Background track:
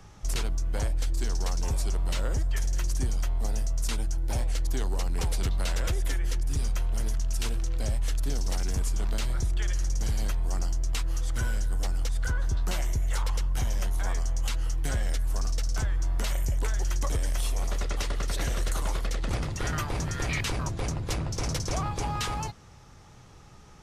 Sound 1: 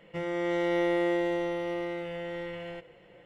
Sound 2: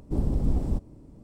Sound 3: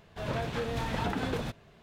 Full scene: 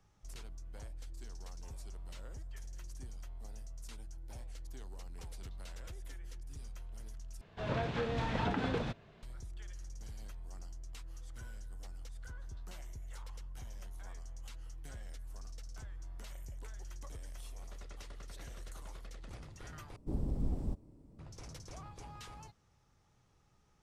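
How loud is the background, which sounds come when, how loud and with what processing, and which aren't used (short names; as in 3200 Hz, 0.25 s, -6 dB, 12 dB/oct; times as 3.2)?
background track -19.5 dB
7.41 replace with 3 -2 dB + air absorption 84 m
19.96 replace with 2 -10 dB
not used: 1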